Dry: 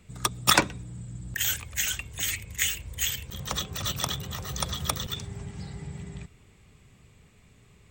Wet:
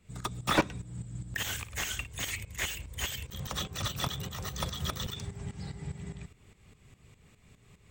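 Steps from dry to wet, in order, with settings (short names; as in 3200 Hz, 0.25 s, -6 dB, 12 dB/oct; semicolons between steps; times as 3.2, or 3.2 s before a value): tremolo saw up 4.9 Hz, depth 75%; 0.89–2.07 flutter echo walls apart 9.7 m, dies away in 0.25 s; slew limiter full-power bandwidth 100 Hz; gain +1.5 dB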